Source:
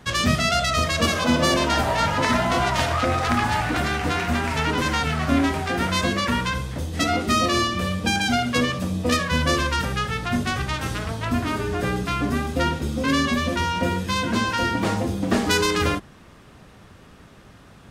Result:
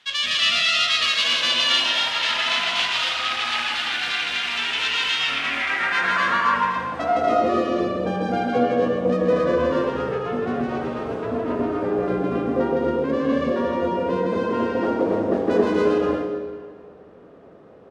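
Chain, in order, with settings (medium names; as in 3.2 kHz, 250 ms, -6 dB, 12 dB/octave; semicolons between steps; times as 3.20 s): loudspeakers at several distances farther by 55 m -1 dB, 81 m -4 dB, 94 m -1 dB; band-pass sweep 3.2 kHz -> 470 Hz, 5.16–7.66 s; algorithmic reverb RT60 1.7 s, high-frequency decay 0.9×, pre-delay 45 ms, DRR 7 dB; trim +5 dB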